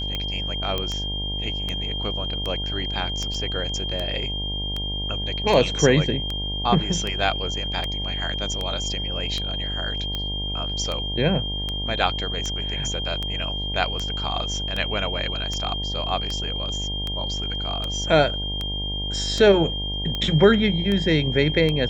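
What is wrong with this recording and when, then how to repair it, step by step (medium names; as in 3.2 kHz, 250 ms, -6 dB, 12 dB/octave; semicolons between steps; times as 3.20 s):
buzz 50 Hz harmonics 19 -30 dBFS
tick 78 rpm -14 dBFS
whine 3.2 kHz -28 dBFS
0.78 s: pop -12 dBFS
3.34 s: dropout 4.5 ms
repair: de-click; de-hum 50 Hz, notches 19; band-stop 3.2 kHz, Q 30; interpolate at 3.34 s, 4.5 ms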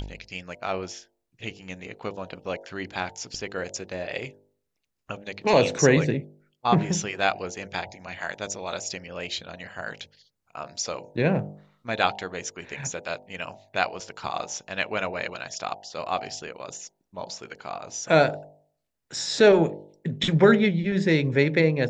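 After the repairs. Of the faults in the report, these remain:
nothing left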